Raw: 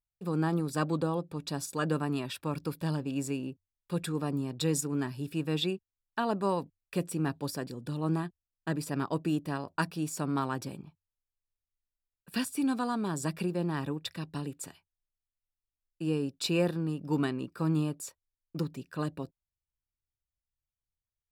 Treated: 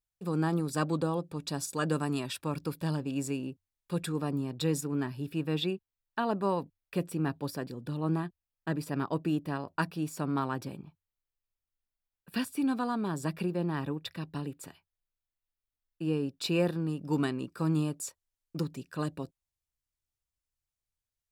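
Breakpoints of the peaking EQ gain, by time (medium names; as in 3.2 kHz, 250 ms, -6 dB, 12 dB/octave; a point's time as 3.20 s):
peaking EQ 7.6 kHz 1.3 oct
1.73 s +2.5 dB
2.07 s +9.5 dB
2.57 s +0.5 dB
3.99 s +0.5 dB
4.91 s -7 dB
16.19 s -7 dB
17.16 s +3.5 dB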